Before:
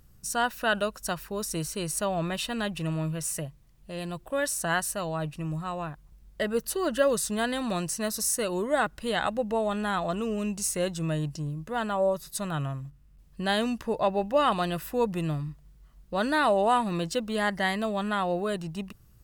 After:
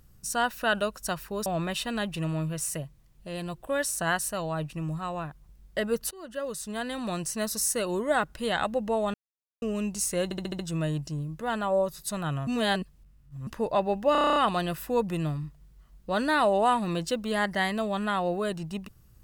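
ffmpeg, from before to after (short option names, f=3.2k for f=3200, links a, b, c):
-filter_complex "[0:a]asplit=20[a][b][c][d][e][f][g][h][i][j][k][l][m][n][o][p][q][r][s][t];[a]atrim=end=1.462[u];[b]atrim=start=2.088:end=6.74,asetpts=PTS-STARTPTS,afade=t=out:st=4.648:d=0.004:c=hsin:silence=0.1[v];[c]atrim=start=6.74:end=9.77,asetpts=PTS-STARTPTS,afade=t=in:d=1.34:silence=0.1,afade=t=out:st=3.026:d=0.004:c=hsin[w];[d]atrim=start=9.77:end=10.25,asetpts=PTS-STARTPTS,volume=0[x];[e]atrim=start=10.25:end=10.942,asetpts=PTS-STARTPTS,afade=t=in:d=0.004:c=hsin[y];[f]atrim=start=10.868:end=10.942[z];[g]atrim=start=10.868:end=10.942[aa];[h]atrim=start=10.868:end=10.942[ab];[i]atrim=start=10.868:end=10.942[ac];[j]atrim=start=10.868:end=12.752[ad];[k]atrim=start=12.748:end=13.752,asetpts=PTS-STARTPTS,areverse[ae];[l]atrim=start=13.748:end=14.432[af];[m]atrim=start=14.398:end=14.432[ag];[n]atrim=start=14.398:end=14.432[ah];[o]atrim=start=14.398:end=14.432[ai];[p]atrim=start=14.398:end=14.432[aj];[q]atrim=start=14.398:end=14.432[ak];[r]atrim=start=14.398:end=14.432[al];[s]atrim=start=14.398:end=14.432[am];[t]atrim=start=14.398[an];[v][w][x][y]concat=n=4:v=0:a=1[ao];[u][ao]acrossfade=d=0.004:c1=hsin:c2=hsin[ap];[ap][z]acrossfade=d=0.004:c1=hsin:c2=hsin[aq];[aq][aa]acrossfade=d=0.004:c1=hsin:c2=hsin[ar];[ar][ab]acrossfade=d=0.004:c1=hsin:c2=hsin[as];[as][ac]acrossfade=d=0.004:c1=hsin:c2=hsin[at];[at][ad]acrossfade=d=0.004:c1=hsin:c2=hsin[au];[au][ae]acrossfade=d=0.004:c1=hsin:c2=hsin[av];[av][af]acrossfade=d=0.004:c1=hsin:c2=hsin[aw];[aw][ag]acrossfade=d=0.004:c1=hsin:c2=hsin[ax];[ax][ah]acrossfade=d=0.004:c1=hsin:c2=hsin[ay];[ay][ai]acrossfade=d=0.004:c1=hsin:c2=hsin[az];[az][aj]acrossfade=d=0.004:c1=hsin:c2=hsin[ba];[ba][ak]acrossfade=d=0.004:c1=hsin:c2=hsin[bb];[bb][al]acrossfade=d=0.004:c1=hsin:c2=hsin[bc];[bc][am]acrossfade=d=0.004:c1=hsin:c2=hsin[bd];[bd][an]acrossfade=d=0.004:c1=hsin:c2=hsin"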